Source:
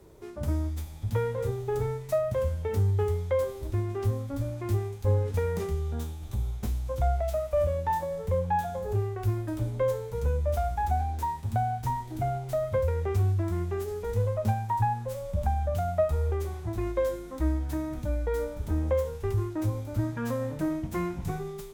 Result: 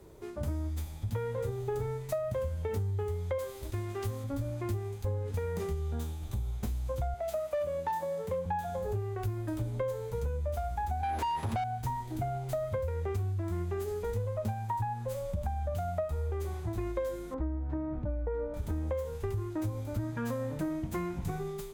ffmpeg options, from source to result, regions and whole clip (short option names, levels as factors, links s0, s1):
-filter_complex "[0:a]asettb=1/sr,asplit=3[s0][s1][s2];[s0]atrim=end=3.384[s3];[s1]atrim=start=3.38:end=4.24,asetpts=PTS-STARTPTS,afade=t=in:d=0.004:c=qsin,afade=t=out:st=0.856:d=0.004:c=qsin,tiltshelf=f=1100:g=-4.5,aeval=exprs='sgn(val(0))*max(abs(val(0))-0.00178,0)':c=same[s4];[s2]atrim=start=4.236[s5];[s3][s4]acrossfade=d=0.004:c1=hsin:c2=qsin[s6];[s6][s5]acrossfade=d=0.004:c1=qsin:c2=hsin,asettb=1/sr,asplit=3[s7][s8][s9];[s7]atrim=end=7.144[s10];[s8]atrim=start=7.14:end=8.46,asetpts=PTS-STARTPTS,afade=t=in:d=0.004:c=qsin,afade=t=out:st=1.316:d=0.004:c=qsin,highpass=170,volume=12.6,asoftclip=hard,volume=0.0794[s11];[s9]atrim=start=8.456[s12];[s10][s11]acrossfade=d=0.004:c1=hsin:c2=qsin[s13];[s13][s12]acrossfade=d=0.004:c1=qsin:c2=hsin,asettb=1/sr,asplit=3[s14][s15][s16];[s14]atrim=end=11.034[s17];[s15]atrim=start=11.03:end=11.64,asetpts=PTS-STARTPTS,afade=t=in:d=0.004:c=qsin,afade=t=out:st=0.606:d=0.004:c=qsin,aeval=exprs='val(0)+0.00158*sin(2*PI*11000*n/s)':c=same,asplit=2[s18][s19];[s19]highpass=f=720:p=1,volume=25.1,asoftclip=type=tanh:threshold=0.15[s20];[s18][s20]amix=inputs=2:normalize=0,lowpass=f=1400:p=1,volume=0.501[s21];[s16]atrim=start=11.636[s22];[s17][s21]acrossfade=d=0.004:c1=hsin:c2=qsin[s23];[s23][s22]acrossfade=d=0.004:c1=qsin:c2=hsin,asettb=1/sr,asplit=3[s24][s25][s26];[s24]atrim=end=17.344[s27];[s25]atrim=start=17.34:end=18.54,asetpts=PTS-STARTPTS,afade=t=in:d=0.004:c=qsin,afade=t=out:st=1.196:d=0.004:c=qsin,lowpass=1200,acompressor=mode=upward:threshold=0.0251:ratio=2.5:attack=3.2:release=140:knee=2.83:detection=peak[s28];[s26]atrim=start=18.536[s29];[s27][s28]acrossfade=d=0.004:c1=hsin:c2=qsin[s30];[s30][s29]acrossfade=d=0.004:c1=qsin:c2=hsin,acompressor=threshold=0.0316:ratio=6,bandreject=f=5500:w=22"